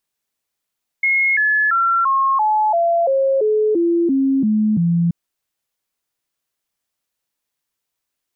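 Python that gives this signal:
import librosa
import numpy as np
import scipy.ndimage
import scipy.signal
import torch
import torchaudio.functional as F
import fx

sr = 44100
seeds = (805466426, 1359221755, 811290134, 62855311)

y = fx.stepped_sweep(sr, from_hz=2160.0, direction='down', per_octave=3, tones=12, dwell_s=0.34, gap_s=0.0, level_db=-13.0)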